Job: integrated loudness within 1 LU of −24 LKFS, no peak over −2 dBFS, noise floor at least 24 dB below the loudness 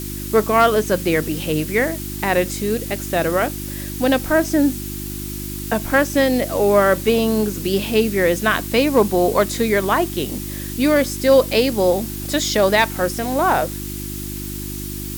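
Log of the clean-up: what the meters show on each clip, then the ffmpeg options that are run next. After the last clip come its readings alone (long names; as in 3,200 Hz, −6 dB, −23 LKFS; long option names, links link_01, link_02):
mains hum 50 Hz; hum harmonics up to 350 Hz; level of the hum −27 dBFS; background noise floor −28 dBFS; target noise floor −43 dBFS; integrated loudness −19.0 LKFS; sample peak −3.5 dBFS; target loudness −24.0 LKFS
→ -af "bandreject=frequency=50:width_type=h:width=4,bandreject=frequency=100:width_type=h:width=4,bandreject=frequency=150:width_type=h:width=4,bandreject=frequency=200:width_type=h:width=4,bandreject=frequency=250:width_type=h:width=4,bandreject=frequency=300:width_type=h:width=4,bandreject=frequency=350:width_type=h:width=4"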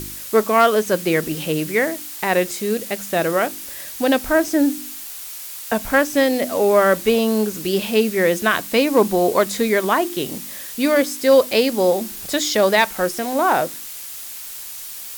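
mains hum none found; background noise floor −34 dBFS; target noise floor −43 dBFS
→ -af "afftdn=noise_reduction=9:noise_floor=-34"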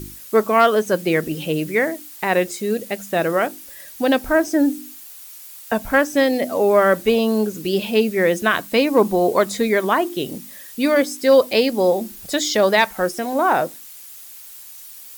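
background noise floor −40 dBFS; target noise floor −43 dBFS
→ -af "afftdn=noise_reduction=6:noise_floor=-40"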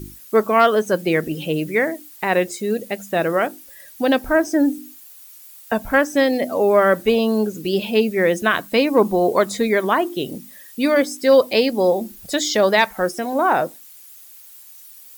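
background noise floor −43 dBFS; integrated loudness −19.0 LKFS; sample peak −3.5 dBFS; target loudness −24.0 LKFS
→ -af "volume=-5dB"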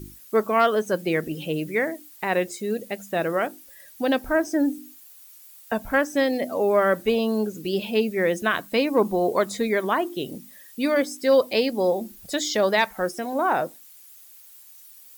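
integrated loudness −24.0 LKFS; sample peak −8.5 dBFS; background noise floor −48 dBFS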